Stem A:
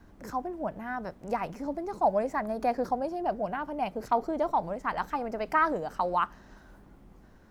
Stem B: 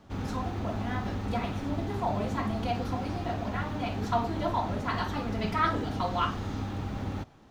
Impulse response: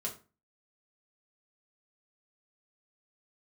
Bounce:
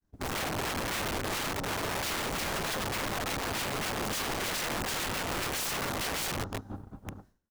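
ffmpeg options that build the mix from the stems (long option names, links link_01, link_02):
-filter_complex "[0:a]bass=frequency=250:gain=3,treble=frequency=4000:gain=11,volume=-10.5dB,asplit=2[link_01][link_02];[1:a]afwtdn=0.0112,volume=-1,adelay=7.9,volume=2dB[link_03];[link_02]apad=whole_len=331108[link_04];[link_03][link_04]sidechaingate=range=-33dB:threshold=-58dB:ratio=16:detection=peak[link_05];[link_01][link_05]amix=inputs=2:normalize=0,agate=range=-33dB:threshold=-52dB:ratio=3:detection=peak,aeval=exprs='(mod(25.1*val(0)+1,2)-1)/25.1':channel_layout=same"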